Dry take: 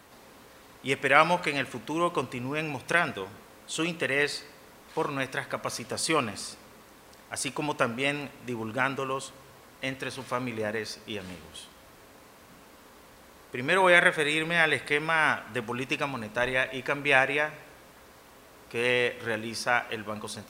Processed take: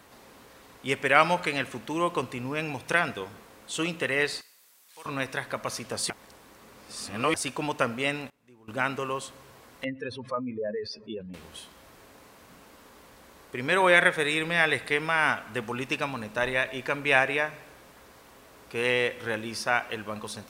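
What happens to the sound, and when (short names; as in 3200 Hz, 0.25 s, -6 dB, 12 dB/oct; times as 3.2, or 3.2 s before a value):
4.41–5.06 pre-emphasis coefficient 0.97
6.1–7.34 reverse
7.91–9.07 dip -22 dB, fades 0.39 s logarithmic
9.84–11.34 spectral contrast raised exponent 2.5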